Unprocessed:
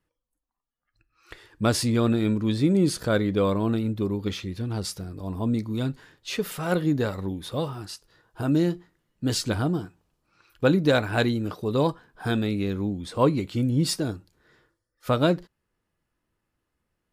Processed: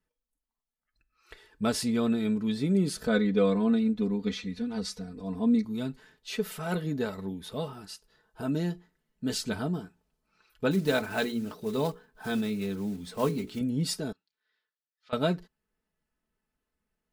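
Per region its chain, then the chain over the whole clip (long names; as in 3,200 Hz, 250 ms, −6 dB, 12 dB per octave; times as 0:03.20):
0:03.07–0:05.65: low-pass filter 7,500 Hz + comb filter 4.1 ms, depth 88%
0:10.71–0:13.61: one scale factor per block 5 bits + mains-hum notches 60/120/180/240/300/360/420/480 Hz
0:14.12–0:15.13: low-pass filter 4,200 Hz 24 dB per octave + first difference
whole clip: notch filter 1,100 Hz, Q 21; comb filter 4.6 ms, depth 65%; level −6.5 dB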